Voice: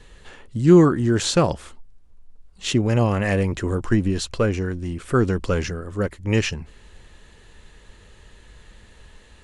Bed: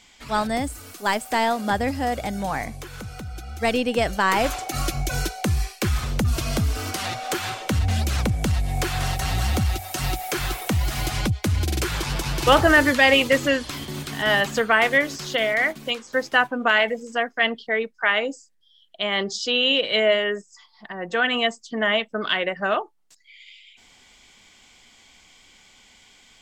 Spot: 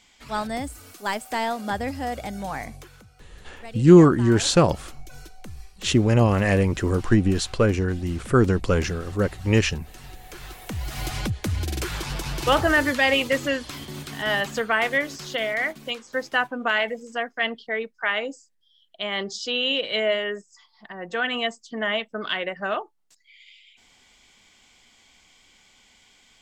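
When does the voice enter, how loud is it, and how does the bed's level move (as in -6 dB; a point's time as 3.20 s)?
3.20 s, +1.0 dB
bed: 2.75 s -4.5 dB
3.14 s -19 dB
10.15 s -19 dB
11.06 s -4 dB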